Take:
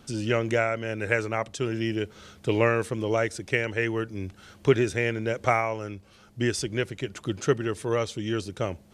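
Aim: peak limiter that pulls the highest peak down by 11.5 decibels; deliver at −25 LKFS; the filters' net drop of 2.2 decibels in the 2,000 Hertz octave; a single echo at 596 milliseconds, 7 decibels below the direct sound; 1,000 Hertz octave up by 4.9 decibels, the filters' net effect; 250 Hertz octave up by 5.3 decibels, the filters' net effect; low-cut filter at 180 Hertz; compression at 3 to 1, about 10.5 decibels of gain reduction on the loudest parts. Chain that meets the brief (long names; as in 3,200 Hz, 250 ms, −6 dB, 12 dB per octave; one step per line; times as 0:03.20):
high-pass filter 180 Hz
parametric band 250 Hz +8 dB
parametric band 1,000 Hz +8 dB
parametric band 2,000 Hz −5.5 dB
downward compressor 3 to 1, threshold −25 dBFS
brickwall limiter −22 dBFS
single-tap delay 596 ms −7 dB
level +7.5 dB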